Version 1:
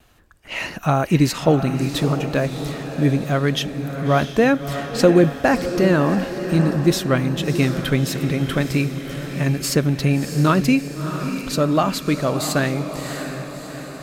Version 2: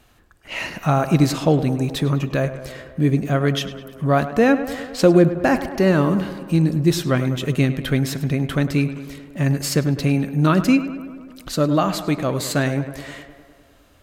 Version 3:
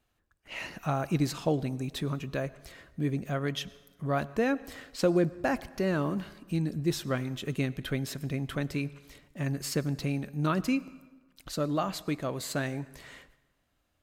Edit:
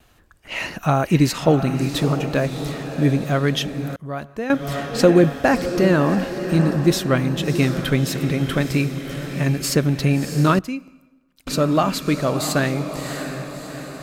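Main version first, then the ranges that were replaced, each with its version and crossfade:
1
3.96–4.50 s: from 3
10.59–11.47 s: from 3
not used: 2

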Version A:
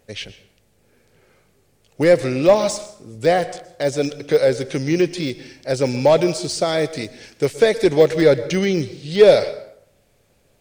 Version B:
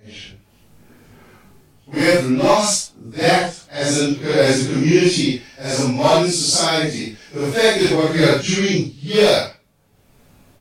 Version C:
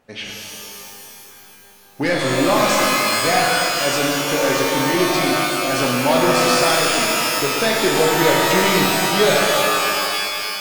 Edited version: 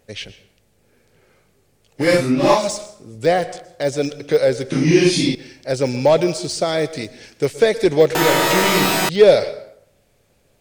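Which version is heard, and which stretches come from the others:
A
2.06–2.61 s: from B, crossfade 0.16 s
4.72–5.35 s: from B
8.15–9.09 s: from C

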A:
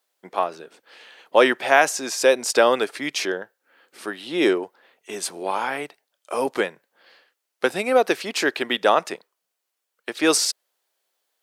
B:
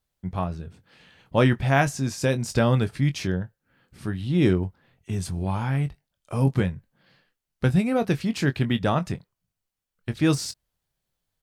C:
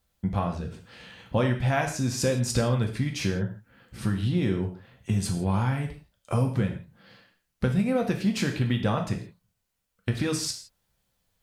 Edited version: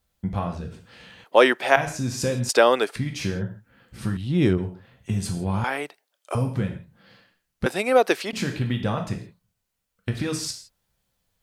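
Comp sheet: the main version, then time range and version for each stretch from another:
C
1.24–1.76 s: from A
2.49–2.96 s: from A
4.17–4.58 s: from B
5.64–6.35 s: from A
7.66–8.33 s: from A

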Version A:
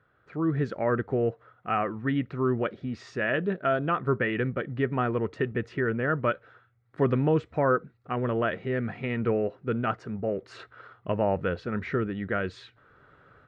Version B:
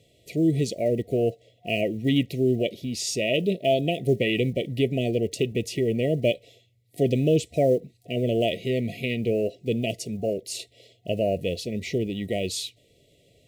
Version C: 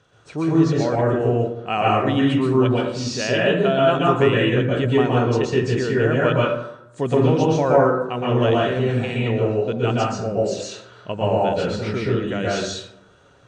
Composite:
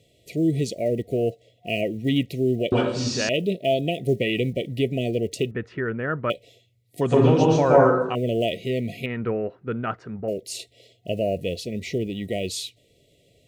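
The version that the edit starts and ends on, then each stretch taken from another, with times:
B
2.72–3.29 s: from C
5.51–6.30 s: from A
7.01–8.15 s: from C
9.06–10.28 s: from A

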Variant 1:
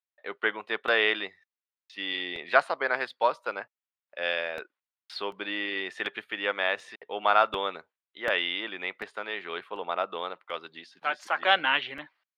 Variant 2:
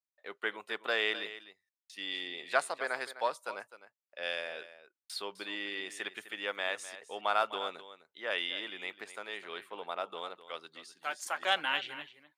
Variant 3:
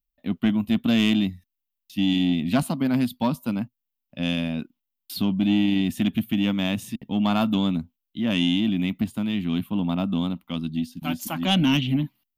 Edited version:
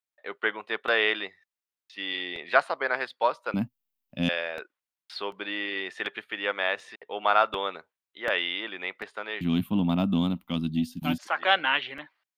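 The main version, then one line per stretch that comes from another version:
1
3.54–4.29 s: from 3
9.41–11.18 s: from 3
not used: 2

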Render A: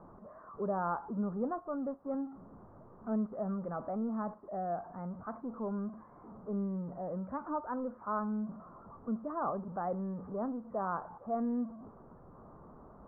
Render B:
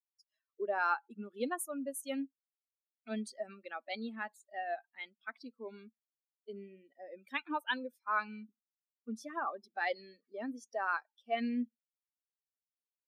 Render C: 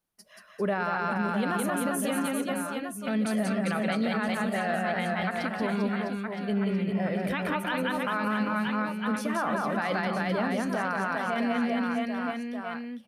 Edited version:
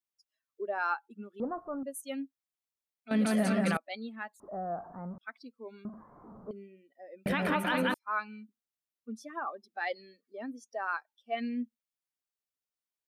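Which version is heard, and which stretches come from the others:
B
1.40–1.83 s: from A
3.11–3.77 s: from C
4.40–5.18 s: from A
5.85–6.51 s: from A
7.26–7.94 s: from C

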